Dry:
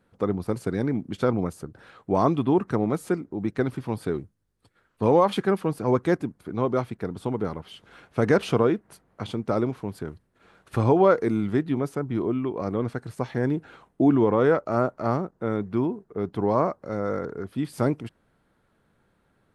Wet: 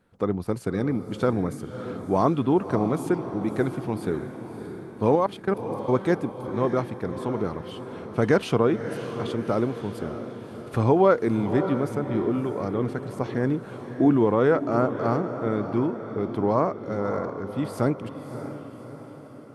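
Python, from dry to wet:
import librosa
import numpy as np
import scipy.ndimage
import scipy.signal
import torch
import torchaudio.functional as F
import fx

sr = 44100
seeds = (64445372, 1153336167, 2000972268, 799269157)

y = fx.level_steps(x, sr, step_db=21, at=(5.15, 5.93))
y = fx.echo_diffused(y, sr, ms=601, feedback_pct=53, wet_db=-10.0)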